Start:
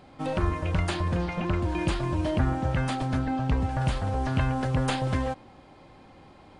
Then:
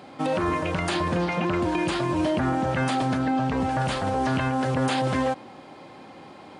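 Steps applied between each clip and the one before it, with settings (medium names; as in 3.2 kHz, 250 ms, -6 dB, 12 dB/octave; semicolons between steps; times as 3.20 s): high-pass 180 Hz 12 dB/octave; peak limiter -24 dBFS, peak gain reduction 8.5 dB; trim +8 dB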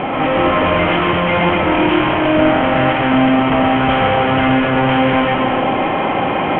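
fuzz box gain 47 dB, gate -54 dBFS; rippled Chebyshev low-pass 3.2 kHz, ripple 3 dB; reverberation RT60 2.1 s, pre-delay 45 ms, DRR -0.5 dB; trim -1.5 dB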